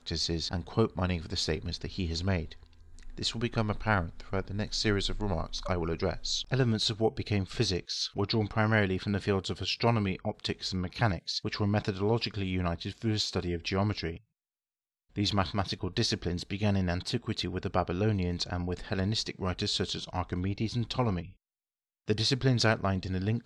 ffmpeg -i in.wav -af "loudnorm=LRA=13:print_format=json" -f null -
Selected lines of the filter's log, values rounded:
"input_i" : "-30.9",
"input_tp" : "-11.3",
"input_lra" : "3.1",
"input_thresh" : "-41.1",